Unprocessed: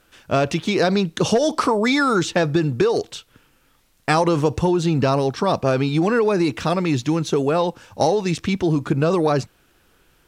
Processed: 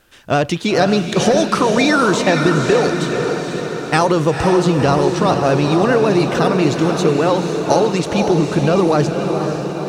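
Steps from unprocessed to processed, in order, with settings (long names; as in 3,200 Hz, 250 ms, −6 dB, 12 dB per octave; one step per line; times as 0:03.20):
feedback delay with all-pass diffusion 519 ms, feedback 61%, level −5 dB
pitch vibrato 14 Hz 39 cents
speed change +4%
level +3 dB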